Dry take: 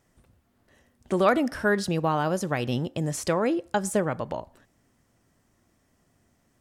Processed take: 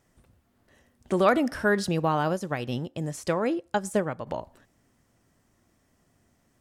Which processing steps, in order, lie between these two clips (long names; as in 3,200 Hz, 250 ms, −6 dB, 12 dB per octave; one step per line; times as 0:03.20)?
0:02.33–0:04.27: expander for the loud parts 1.5 to 1, over −37 dBFS